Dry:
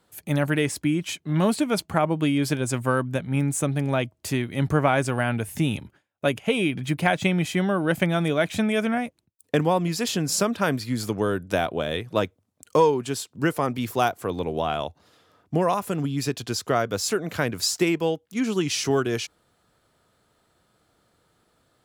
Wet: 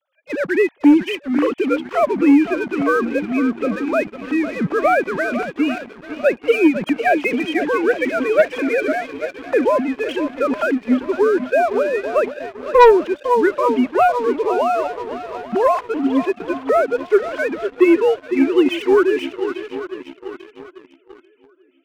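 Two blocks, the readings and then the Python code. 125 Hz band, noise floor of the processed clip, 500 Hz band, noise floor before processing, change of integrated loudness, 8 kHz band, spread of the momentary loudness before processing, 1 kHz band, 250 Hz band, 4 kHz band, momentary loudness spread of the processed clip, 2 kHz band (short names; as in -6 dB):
under -10 dB, -52 dBFS, +9.0 dB, -69 dBFS, +7.0 dB, under -10 dB, 6 LU, +8.0 dB, +7.5 dB, -3.0 dB, 11 LU, +6.5 dB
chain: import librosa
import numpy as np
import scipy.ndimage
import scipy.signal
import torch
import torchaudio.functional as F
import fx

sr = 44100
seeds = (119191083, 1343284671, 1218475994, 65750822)

y = fx.sine_speech(x, sr)
y = fx.echo_swing(y, sr, ms=840, ratio=1.5, feedback_pct=43, wet_db=-11.5)
y = fx.leveller(y, sr, passes=2)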